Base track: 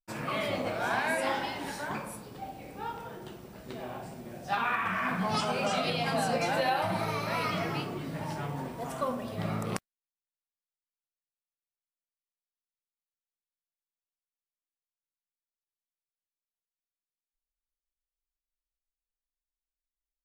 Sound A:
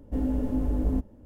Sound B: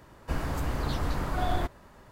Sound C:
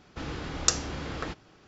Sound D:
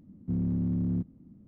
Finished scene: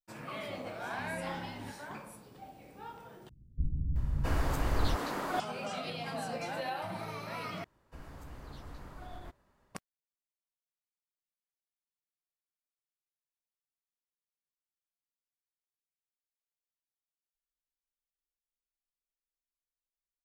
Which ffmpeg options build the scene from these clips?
ffmpeg -i bed.wav -i cue0.wav -i cue1.wav -i cue2.wav -i cue3.wav -filter_complex "[2:a]asplit=2[link_01][link_02];[0:a]volume=-9dB[link_03];[4:a]asplit=2[link_04][link_05];[link_05]adelay=3.7,afreqshift=-1.4[link_06];[link_04][link_06]amix=inputs=2:normalize=1[link_07];[link_01]acrossover=split=200[link_08][link_09];[link_09]adelay=670[link_10];[link_08][link_10]amix=inputs=2:normalize=0[link_11];[link_02]alimiter=limit=-18.5dB:level=0:latency=1:release=71[link_12];[link_03]asplit=3[link_13][link_14][link_15];[link_13]atrim=end=3.294[link_16];[link_11]atrim=end=2.11[link_17];[link_14]atrim=start=5.396:end=7.644[link_18];[link_12]atrim=end=2.11,asetpts=PTS-STARTPTS,volume=-17.5dB[link_19];[link_15]atrim=start=9.746[link_20];[link_07]atrim=end=1.47,asetpts=PTS-STARTPTS,volume=-14.5dB,afade=type=in:duration=0.004:curve=hsin,afade=type=out:start_time=1.466:duration=0.004:curve=hsin,adelay=690[link_21];[link_16][link_17]acrossfade=duration=0.004:curve1=hsin:curve2=hsin[link_22];[link_22][link_18]acrossfade=duration=0.004:curve1=hsin:curve2=hsin[link_23];[link_23][link_19]acrossfade=duration=0.004:curve1=hsin:curve2=hsin[link_24];[link_24][link_20]acrossfade=duration=0.004:curve1=hsin:curve2=hsin[link_25];[link_25][link_21]amix=inputs=2:normalize=0" out.wav

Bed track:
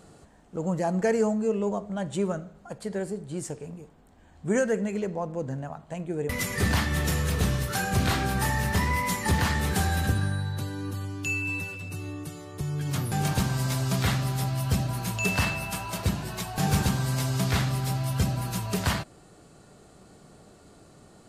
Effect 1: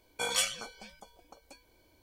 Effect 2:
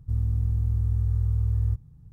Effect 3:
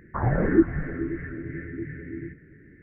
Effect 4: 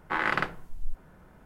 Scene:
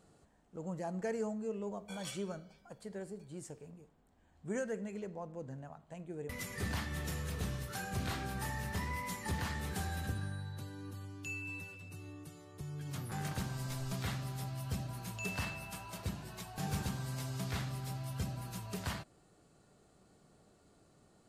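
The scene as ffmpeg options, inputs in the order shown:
ffmpeg -i bed.wav -i cue0.wav -i cue1.wav -i cue2.wav -i cue3.wav -filter_complex "[0:a]volume=-13dB[link_01];[4:a]acompressor=threshold=-28dB:ratio=6:attack=3.2:release=140:knee=1:detection=peak[link_02];[1:a]atrim=end=2.02,asetpts=PTS-STARTPTS,volume=-17dB,afade=type=in:duration=0.004:curve=hsin,afade=type=out:start_time=2.016:duration=0.004:curve=hsin,adelay=1690[link_03];[link_02]atrim=end=1.45,asetpts=PTS-STARTPTS,volume=-18dB,afade=type=in:duration=0.004:curve=hsin,afade=type=out:start_time=1.446:duration=0.004:curve=hsin,adelay=12990[link_04];[link_01][link_03][link_04]amix=inputs=3:normalize=0" out.wav

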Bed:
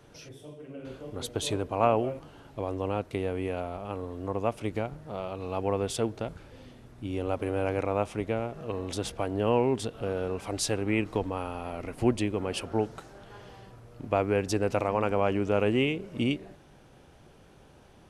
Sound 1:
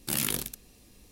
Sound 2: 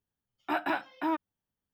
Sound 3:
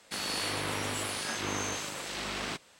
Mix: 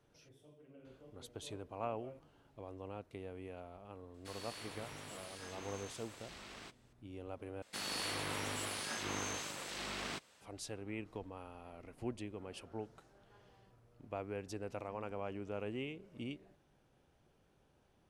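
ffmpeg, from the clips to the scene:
ffmpeg -i bed.wav -i cue0.wav -i cue1.wav -i cue2.wav -filter_complex "[3:a]asplit=2[link_01][link_02];[0:a]volume=-16.5dB,asplit=2[link_03][link_04];[link_03]atrim=end=7.624[link_05];[link_02]atrim=end=2.79,asetpts=PTS-STARTPTS,volume=-6.5dB[link_06];[link_04]atrim=start=10.406[link_07];[link_01]atrim=end=2.79,asetpts=PTS-STARTPTS,volume=-16.5dB,afade=type=in:duration=0.004:curve=hsin,afade=type=out:start_time=2.786:duration=0.004:curve=hsin,adelay=4140[link_08];[link_05][link_06]acrossfade=duration=0.004:curve1=hsin:curve2=hsin[link_09];[link_09][link_07]acrossfade=duration=0.004:curve1=hsin:curve2=hsin[link_10];[link_10][link_08]amix=inputs=2:normalize=0" out.wav

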